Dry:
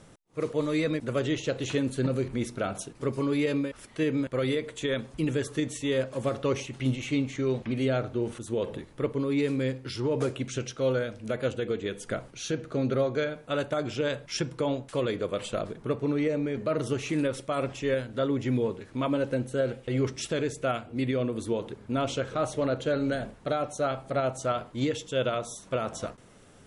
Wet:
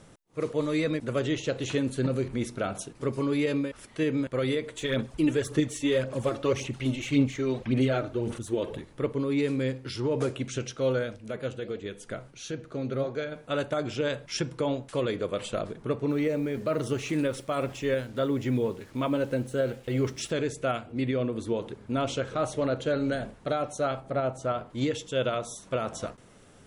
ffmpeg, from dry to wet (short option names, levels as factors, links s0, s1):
-filter_complex "[0:a]asplit=3[s0][s1][s2];[s0]afade=t=out:st=4.73:d=0.02[s3];[s1]aphaser=in_gain=1:out_gain=1:delay=3.4:decay=0.5:speed=1.8:type=sinusoidal,afade=t=in:st=4.73:d=0.02,afade=t=out:st=8.79:d=0.02[s4];[s2]afade=t=in:st=8.79:d=0.02[s5];[s3][s4][s5]amix=inputs=3:normalize=0,asettb=1/sr,asplit=3[s6][s7][s8];[s6]atrim=end=11.164[s9];[s7]atrim=start=11.16:end=13.32,asetpts=PTS-STARTPTS,afade=t=in:d=0.004:c=qsin,afade=t=out:st=2.156:d=0.004:c=qsin,flanger=delay=0.2:depth=7.7:regen=85:speed=1.4:shape=sinusoidal[s10];[s8]atrim=start=13.316[s11];[s9][s10]acrossfade=d=0.004:c1=hsin:c2=qsin[s12];[s12][s11]acrossfade=d=0.004:c1=qsin:c2=hsin,asplit=3[s13][s14][s15];[s13]afade=t=out:st=16.09:d=0.02[s16];[s14]acrusher=bits=8:mix=0:aa=0.5,afade=t=in:st=16.09:d=0.02,afade=t=out:st=20.3:d=0.02[s17];[s15]afade=t=in:st=20.3:d=0.02[s18];[s16][s17][s18]amix=inputs=3:normalize=0,asettb=1/sr,asplit=3[s19][s20][s21];[s19]atrim=end=20.924[s22];[s20]atrim=start=20.92:end=21.57,asetpts=PTS-STARTPTS,afade=t=in:d=0.004:c=qsin,afade=t=out:st=0.646:d=0.004:c=qsin,highshelf=f=8400:g=-9.5[s23];[s21]atrim=start=21.566[s24];[s22][s23]acrossfade=d=0.004:c1=hsin:c2=qsin[s25];[s25][s24]acrossfade=d=0.004:c1=qsin:c2=hsin,asettb=1/sr,asplit=3[s26][s27][s28];[s26]atrim=end=24.004[s29];[s27]atrim=start=24:end=24.7,asetpts=PTS-STARTPTS,afade=t=in:d=0.004:c=qsin,afade=t=out:st=0.696:d=0.004:c=qsin,highshelf=f=2400:g=-8.5[s30];[s28]atrim=start=24.696[s31];[s29][s30]acrossfade=d=0.004:c1=hsin:c2=qsin[s32];[s32][s31]acrossfade=d=0.004:c1=qsin:c2=hsin"